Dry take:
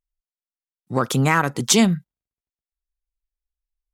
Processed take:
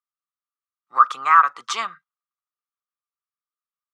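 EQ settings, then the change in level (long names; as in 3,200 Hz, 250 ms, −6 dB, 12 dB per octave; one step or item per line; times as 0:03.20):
high-pass with resonance 1,200 Hz, resonance Q 15
high-frequency loss of the air 73 metres
high-shelf EQ 5,800 Hz −8.5 dB
−5.0 dB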